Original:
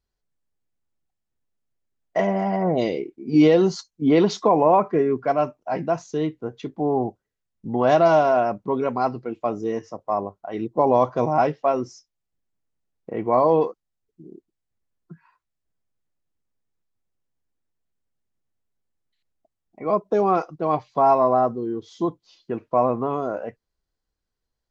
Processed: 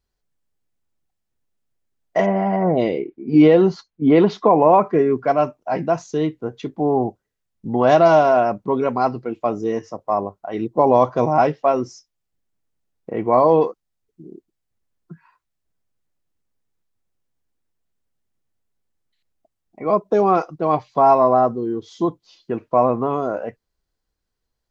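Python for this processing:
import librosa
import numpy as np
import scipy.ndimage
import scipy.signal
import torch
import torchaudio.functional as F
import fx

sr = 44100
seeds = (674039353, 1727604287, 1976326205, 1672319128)

y = fx.lowpass(x, sr, hz=2800.0, slope=12, at=(2.26, 4.62))
y = y * librosa.db_to_amplitude(3.5)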